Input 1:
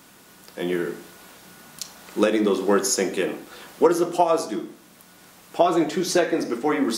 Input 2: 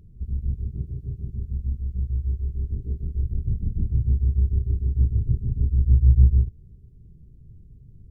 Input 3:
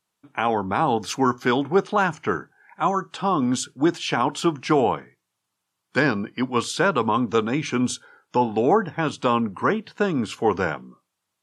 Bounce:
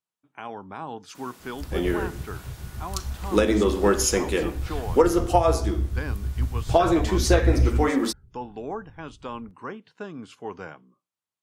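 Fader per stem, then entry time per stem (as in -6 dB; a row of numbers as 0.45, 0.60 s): -0.5, -5.5, -14.5 dB; 1.15, 1.40, 0.00 s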